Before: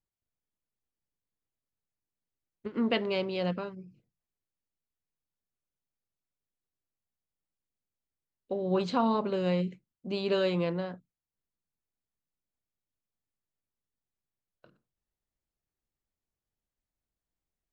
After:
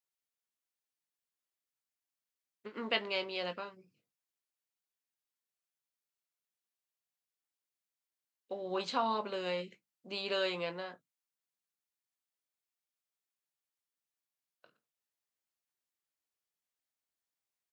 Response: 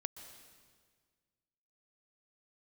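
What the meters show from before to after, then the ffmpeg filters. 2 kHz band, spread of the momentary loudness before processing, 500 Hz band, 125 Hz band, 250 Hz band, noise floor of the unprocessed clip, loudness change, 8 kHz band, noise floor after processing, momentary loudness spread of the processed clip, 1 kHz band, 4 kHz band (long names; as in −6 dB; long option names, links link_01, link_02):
+0.5 dB, 14 LU, −7.0 dB, −17.0 dB, −13.5 dB, below −85 dBFS, −6.0 dB, can't be measured, below −85 dBFS, 14 LU, −3.0 dB, +1.0 dB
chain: -filter_complex "[0:a]highpass=frequency=1200:poles=1,asplit=2[link_01][link_02];[link_02]adelay=19,volume=-9.5dB[link_03];[link_01][link_03]amix=inputs=2:normalize=0,volume=1dB"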